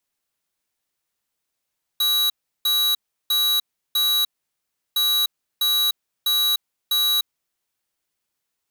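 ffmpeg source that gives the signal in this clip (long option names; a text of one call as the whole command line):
ffmpeg -f lavfi -i "aevalsrc='0.106*(2*lt(mod(3900*t,1),0.5)-1)*clip(min(mod(mod(t,2.96),0.65),0.3-mod(mod(t,2.96),0.65))/0.005,0,1)*lt(mod(t,2.96),2.6)':duration=5.92:sample_rate=44100" out.wav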